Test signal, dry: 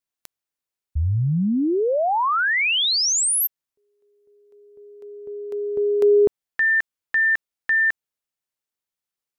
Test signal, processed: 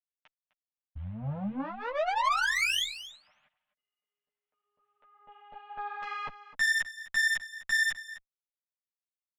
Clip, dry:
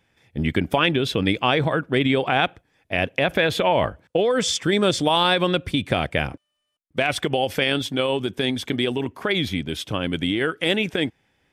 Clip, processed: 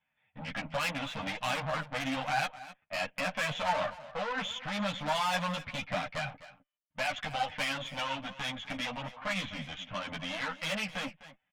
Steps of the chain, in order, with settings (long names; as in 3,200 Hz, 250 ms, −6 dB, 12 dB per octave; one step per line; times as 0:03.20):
mu-law and A-law mismatch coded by A
in parallel at −2 dB: brickwall limiter −15 dBFS
on the sum: Butterworth low-pass 3,200 Hz 48 dB per octave
comb filter 6.6 ms, depth 52%
tube saturation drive 20 dB, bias 0.75
Chebyshev band-stop filter 240–590 Hz, order 2
low-shelf EQ 240 Hz −10.5 dB
single-tap delay 255 ms −16 dB
string-ensemble chorus
level −1.5 dB